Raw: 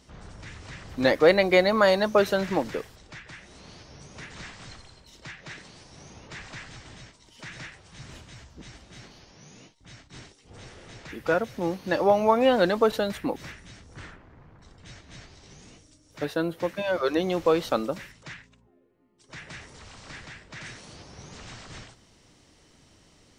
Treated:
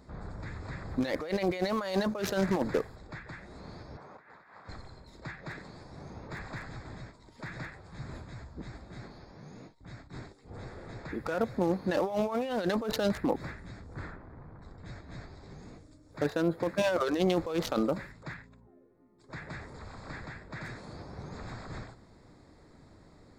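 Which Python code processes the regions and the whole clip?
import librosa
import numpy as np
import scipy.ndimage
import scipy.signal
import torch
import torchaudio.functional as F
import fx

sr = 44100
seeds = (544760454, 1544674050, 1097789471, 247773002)

y = fx.chain(x, sr, fx.bandpass_q(hz=1100.0, q=1.0),
    fx.over_compress(threshold_db=-55.0, ratio=-1.0), at=(3.97, 4.69))
y = fx.wiener(y, sr, points=15)
y = fx.high_shelf(y, sr, hz=3700.0, db=8.0)
y = fx.over_compress(y, sr, threshold_db=-28.0, ratio=-1.0)
y = y * 10.0 ** (-1.5 / 20.0)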